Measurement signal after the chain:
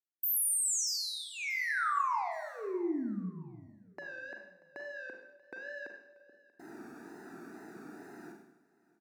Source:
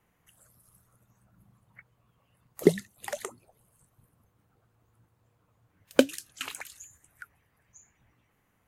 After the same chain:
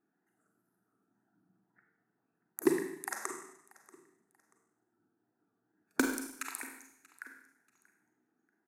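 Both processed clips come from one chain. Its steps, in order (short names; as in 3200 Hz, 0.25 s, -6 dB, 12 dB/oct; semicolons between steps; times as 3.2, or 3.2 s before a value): Wiener smoothing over 41 samples; Chebyshev high-pass 310 Hz, order 3; in parallel at 0 dB: compressor, threshold -41 dBFS; on the sum: wow and flutter 100 cents; fixed phaser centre 1300 Hz, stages 4; overloaded stage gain 15 dB; on a send: feedback echo 0.635 s, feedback 29%, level -22 dB; on the sum: Schroeder reverb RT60 0.79 s, combs from 33 ms, DRR 2.5 dB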